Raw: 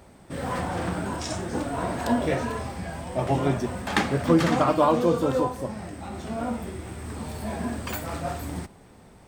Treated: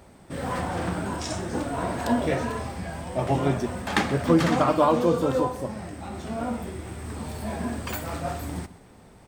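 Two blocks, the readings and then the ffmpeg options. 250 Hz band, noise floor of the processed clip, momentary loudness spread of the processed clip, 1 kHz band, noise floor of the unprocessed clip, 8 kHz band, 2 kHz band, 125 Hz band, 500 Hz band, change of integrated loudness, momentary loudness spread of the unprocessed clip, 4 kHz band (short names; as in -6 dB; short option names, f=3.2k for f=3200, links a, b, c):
0.0 dB, -51 dBFS, 15 LU, 0.0 dB, -51 dBFS, 0.0 dB, 0.0 dB, 0.0 dB, 0.0 dB, 0.0 dB, 15 LU, 0.0 dB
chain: -af "aecho=1:1:128:0.126"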